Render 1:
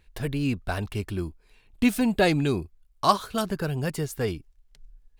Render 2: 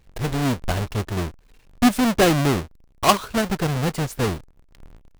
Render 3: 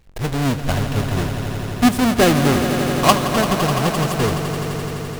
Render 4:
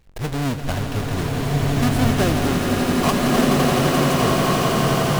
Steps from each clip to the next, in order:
square wave that keeps the level; treble shelf 11 kHz -3 dB
echo with a slow build-up 85 ms, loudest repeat 5, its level -11.5 dB; trim +2 dB
compression, threshold -16 dBFS, peak gain reduction 9 dB; swelling reverb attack 1480 ms, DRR -3.5 dB; trim -2.5 dB

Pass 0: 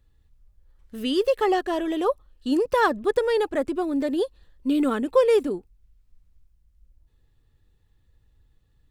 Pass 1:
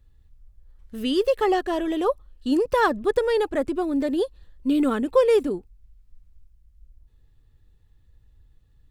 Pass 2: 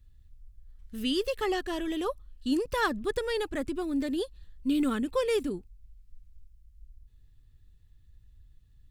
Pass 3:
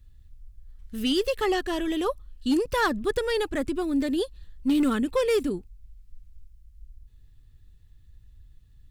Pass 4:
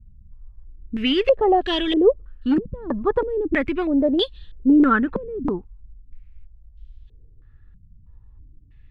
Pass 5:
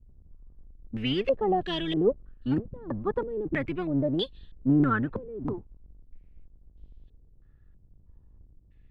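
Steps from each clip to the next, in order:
bass shelf 130 Hz +6.5 dB
peaking EQ 640 Hz -11.5 dB 2.2 oct
hard clipper -22 dBFS, distortion -22 dB; trim +4.5 dB
step-sequenced low-pass 3.1 Hz 200–3400 Hz; trim +4 dB
octave divider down 1 oct, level -3 dB; trim -8.5 dB

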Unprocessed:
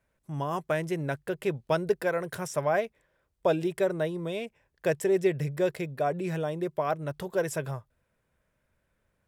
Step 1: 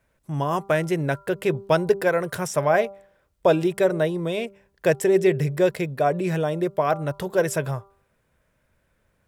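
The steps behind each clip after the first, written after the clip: de-hum 197 Hz, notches 7; trim +7 dB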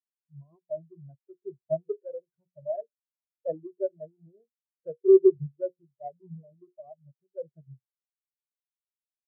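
square wave that keeps the level; hum notches 60/120/180/240/300/360/420/480/540 Hz; spectral contrast expander 4:1; trim -4 dB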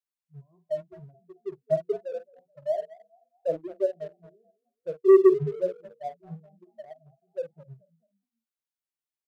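doubling 46 ms -11 dB; frequency-shifting echo 216 ms, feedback 34%, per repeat +32 Hz, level -18.5 dB; waveshaping leveller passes 1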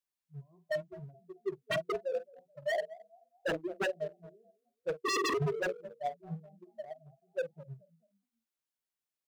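wavefolder -26 dBFS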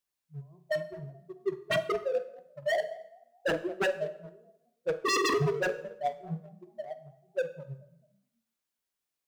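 plate-style reverb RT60 0.78 s, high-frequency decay 0.85×, DRR 10.5 dB; trim +4 dB

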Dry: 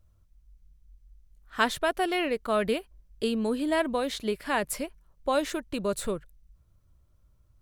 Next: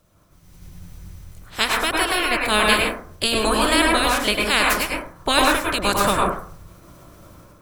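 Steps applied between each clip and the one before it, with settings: spectral peaks clipped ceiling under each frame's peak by 25 dB; level rider gain up to 14 dB; plate-style reverb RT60 0.52 s, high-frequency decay 0.25×, pre-delay 90 ms, DRR -2 dB; trim -2 dB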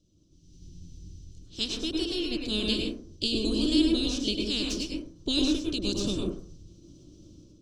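FFT filter 180 Hz 0 dB, 320 Hz +7 dB, 830 Hz -25 dB, 2 kHz -28 dB, 2.9 kHz -3 dB, 6 kHz +4 dB, 12 kHz -27 dB; trim -6 dB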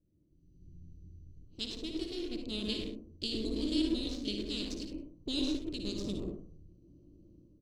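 local Wiener filter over 25 samples; on a send: early reflections 58 ms -8.5 dB, 72 ms -11 dB; on the sum: trim -7.5 dB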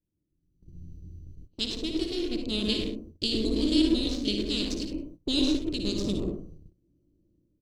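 gate -52 dBFS, range -18 dB; trim +8 dB

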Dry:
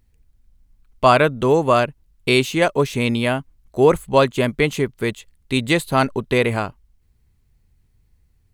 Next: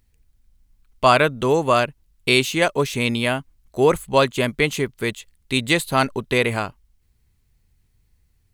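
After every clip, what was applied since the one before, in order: tilt shelf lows -3 dB, about 1.5 kHz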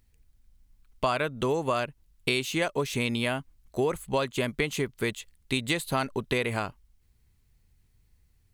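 compression 5:1, threshold -22 dBFS, peak gain reduction 11.5 dB; trim -2 dB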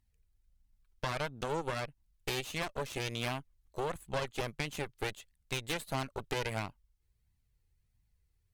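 flange 1.5 Hz, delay 1 ms, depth 1.5 ms, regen -23%; Chebyshev shaper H 8 -12 dB, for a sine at -13.5 dBFS; trim -7.5 dB

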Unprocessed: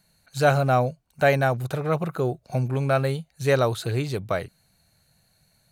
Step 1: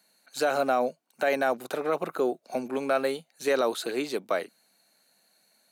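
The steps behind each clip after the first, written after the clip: steep high-pass 230 Hz 36 dB/octave; peak limiter -15 dBFS, peak gain reduction 8.5 dB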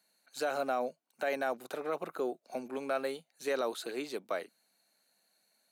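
bass shelf 94 Hz -9.5 dB; trim -7.5 dB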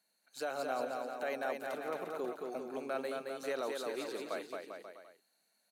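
bouncing-ball echo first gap 220 ms, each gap 0.8×, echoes 5; trim -5 dB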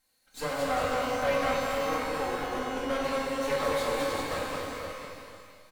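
comb filter that takes the minimum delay 3.8 ms; echo from a far wall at 84 m, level -8 dB; pitch-shifted reverb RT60 1.4 s, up +12 st, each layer -8 dB, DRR -1 dB; trim +5.5 dB

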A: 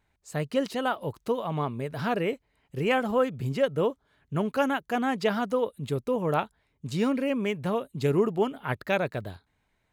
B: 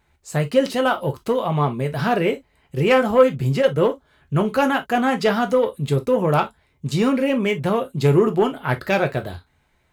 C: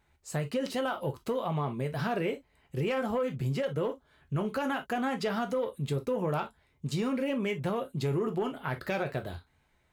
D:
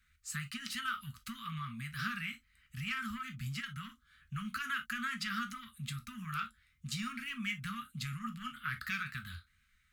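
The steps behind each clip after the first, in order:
saturation -16 dBFS, distortion -21 dB; on a send at -5 dB: reverberation, pre-delay 3 ms; on the sum: trim +8 dB
peak limiter -12.5 dBFS, peak gain reduction 9.5 dB; compression 1.5:1, threshold -28 dBFS, peak gain reduction 4.5 dB; wow and flutter 29 cents; trim -6 dB
Chebyshev band-stop 230–1200 Hz, order 5; peaking EQ 150 Hz -11 dB 1.6 oct; trim +1.5 dB

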